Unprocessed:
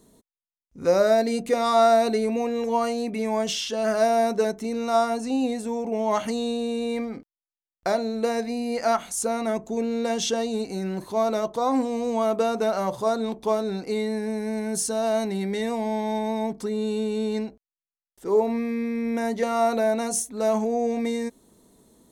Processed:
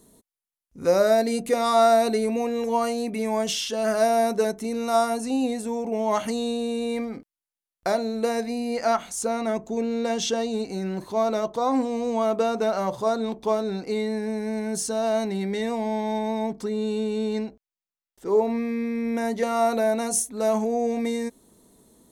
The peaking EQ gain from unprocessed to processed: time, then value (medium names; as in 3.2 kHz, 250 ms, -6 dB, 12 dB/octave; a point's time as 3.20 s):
peaking EQ 11 kHz 0.68 oct
4.69 s +7.5 dB
5.02 s +13.5 dB
5.50 s +5 dB
8.45 s +5 dB
8.96 s -5 dB
18.34 s -5 dB
19.61 s +4 dB